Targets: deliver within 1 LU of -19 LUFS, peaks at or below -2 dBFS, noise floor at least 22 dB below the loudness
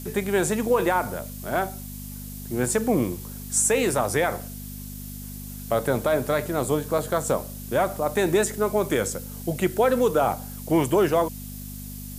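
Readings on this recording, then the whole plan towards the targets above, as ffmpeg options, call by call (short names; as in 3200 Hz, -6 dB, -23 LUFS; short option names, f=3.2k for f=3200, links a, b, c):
hum 50 Hz; harmonics up to 250 Hz; hum level -35 dBFS; noise floor -37 dBFS; noise floor target -46 dBFS; loudness -24.0 LUFS; peak -9.5 dBFS; loudness target -19.0 LUFS
-> -af "bandreject=f=50:t=h:w=4,bandreject=f=100:t=h:w=4,bandreject=f=150:t=h:w=4,bandreject=f=200:t=h:w=4,bandreject=f=250:t=h:w=4"
-af "afftdn=nr=9:nf=-37"
-af "volume=5dB"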